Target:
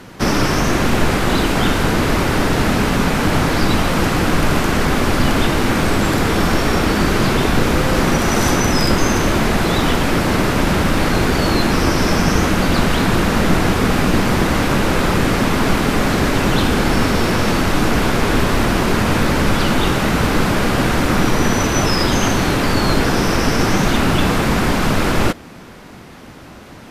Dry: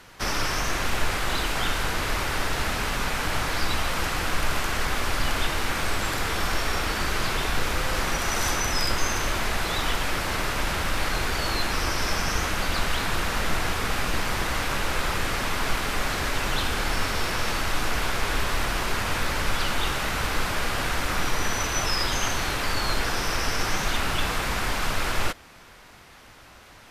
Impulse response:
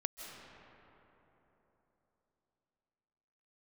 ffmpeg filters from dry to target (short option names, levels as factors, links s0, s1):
-af "equalizer=f=220:w=0.48:g=14.5,volume=1.88"